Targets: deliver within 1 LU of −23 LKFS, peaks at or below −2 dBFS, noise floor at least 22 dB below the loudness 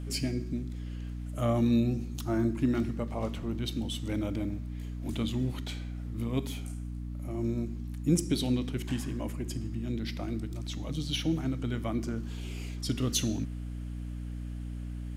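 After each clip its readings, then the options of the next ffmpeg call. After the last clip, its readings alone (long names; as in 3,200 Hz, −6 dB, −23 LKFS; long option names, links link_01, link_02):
mains hum 60 Hz; hum harmonics up to 300 Hz; level of the hum −35 dBFS; integrated loudness −33.0 LKFS; sample peak −13.0 dBFS; target loudness −23.0 LKFS
→ -af "bandreject=frequency=60:width_type=h:width=4,bandreject=frequency=120:width_type=h:width=4,bandreject=frequency=180:width_type=h:width=4,bandreject=frequency=240:width_type=h:width=4,bandreject=frequency=300:width_type=h:width=4"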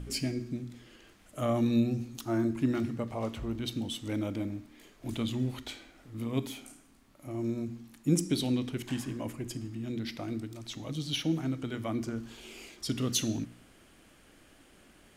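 mains hum none found; integrated loudness −33.5 LKFS; sample peak −13.5 dBFS; target loudness −23.0 LKFS
→ -af "volume=10.5dB"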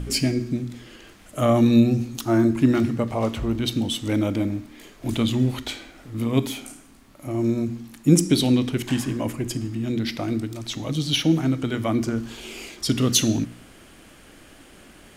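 integrated loudness −23.0 LKFS; sample peak −3.0 dBFS; background noise floor −49 dBFS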